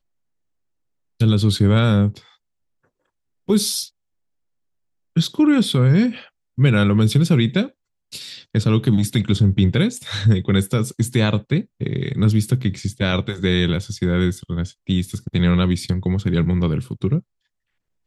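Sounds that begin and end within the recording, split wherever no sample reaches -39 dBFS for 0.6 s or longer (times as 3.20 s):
1.20–2.19 s
3.48–3.88 s
5.16–17.20 s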